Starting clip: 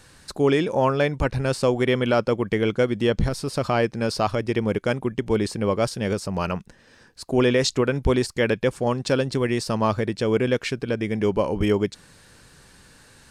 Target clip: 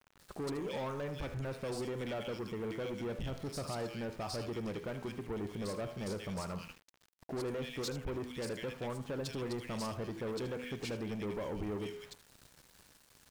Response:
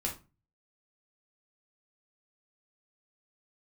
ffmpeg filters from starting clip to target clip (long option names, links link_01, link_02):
-filter_complex "[0:a]bandreject=frequency=82.86:width_type=h:width=4,bandreject=frequency=165.72:width_type=h:width=4,bandreject=frequency=248.58:width_type=h:width=4,bandreject=frequency=331.44:width_type=h:width=4,bandreject=frequency=414.3:width_type=h:width=4,bandreject=frequency=497.16:width_type=h:width=4,bandreject=frequency=580.02:width_type=h:width=4,bandreject=frequency=662.88:width_type=h:width=4,bandreject=frequency=745.74:width_type=h:width=4,bandreject=frequency=828.6:width_type=h:width=4,bandreject=frequency=911.46:width_type=h:width=4,bandreject=frequency=994.32:width_type=h:width=4,bandreject=frequency=1077.18:width_type=h:width=4,bandreject=frequency=1160.04:width_type=h:width=4,bandreject=frequency=1242.9:width_type=h:width=4,bandreject=frequency=1325.76:width_type=h:width=4,bandreject=frequency=1408.62:width_type=h:width=4,bandreject=frequency=1491.48:width_type=h:width=4,bandreject=frequency=1574.34:width_type=h:width=4,bandreject=frequency=1657.2:width_type=h:width=4,bandreject=frequency=1740.06:width_type=h:width=4,bandreject=frequency=1822.92:width_type=h:width=4,bandreject=frequency=1905.78:width_type=h:width=4,bandreject=frequency=1988.64:width_type=h:width=4,bandreject=frequency=2071.5:width_type=h:width=4,bandreject=frequency=2154.36:width_type=h:width=4,bandreject=frequency=2237.22:width_type=h:width=4,bandreject=frequency=2320.08:width_type=h:width=4,bandreject=frequency=2402.94:width_type=h:width=4,bandreject=frequency=2485.8:width_type=h:width=4,bandreject=frequency=2568.66:width_type=h:width=4,bandreject=frequency=2651.52:width_type=h:width=4,bandreject=frequency=2734.38:width_type=h:width=4,bandreject=frequency=2817.24:width_type=h:width=4,bandreject=frequency=2900.1:width_type=h:width=4,bandreject=frequency=2982.96:width_type=h:width=4,bandreject=frequency=3065.82:width_type=h:width=4,bandreject=frequency=3148.68:width_type=h:width=4,alimiter=limit=-18dB:level=0:latency=1:release=267,acrossover=split=2000[link_01][link_02];[link_02]adelay=190[link_03];[link_01][link_03]amix=inputs=2:normalize=0,asoftclip=type=tanh:threshold=-28dB,asplit=2[link_04][link_05];[link_05]aecho=0:1:77:0.224[link_06];[link_04][link_06]amix=inputs=2:normalize=0,aeval=exprs='val(0)*gte(abs(val(0)),0.00473)':channel_layout=same,volume=-6.5dB"